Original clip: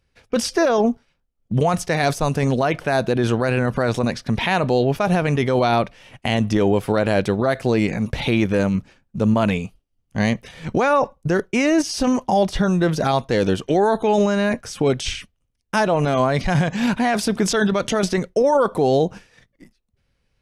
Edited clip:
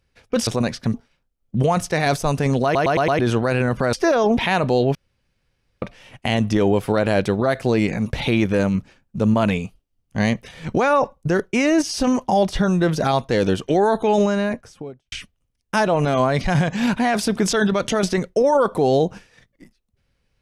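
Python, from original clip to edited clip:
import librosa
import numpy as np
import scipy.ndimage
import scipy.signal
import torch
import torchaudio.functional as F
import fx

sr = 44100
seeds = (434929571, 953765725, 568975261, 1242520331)

y = fx.studio_fade_out(x, sr, start_s=14.18, length_s=0.94)
y = fx.edit(y, sr, fx.swap(start_s=0.47, length_s=0.44, other_s=3.9, other_length_s=0.47),
    fx.stutter_over(start_s=2.61, slice_s=0.11, count=5),
    fx.room_tone_fill(start_s=4.95, length_s=0.87), tone=tone)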